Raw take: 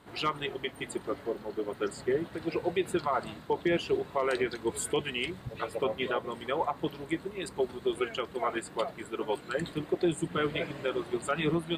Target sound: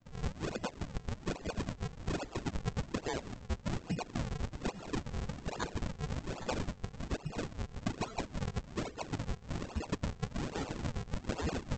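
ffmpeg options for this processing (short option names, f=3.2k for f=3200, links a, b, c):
-af "lowpass=f=2.5k:t=q:w=0.5098,lowpass=f=2.5k:t=q:w=0.6013,lowpass=f=2.5k:t=q:w=0.9,lowpass=f=2.5k:t=q:w=2.563,afreqshift=-2900,afftfilt=real='re*gte(hypot(re,im),0.00562)':imag='im*gte(hypot(re,im),0.00562)':win_size=1024:overlap=0.75,acompressor=threshold=-35dB:ratio=6,aresample=16000,acrusher=samples=30:mix=1:aa=0.000001:lfo=1:lforange=48:lforate=1.2,aresample=44100,volume=2dB"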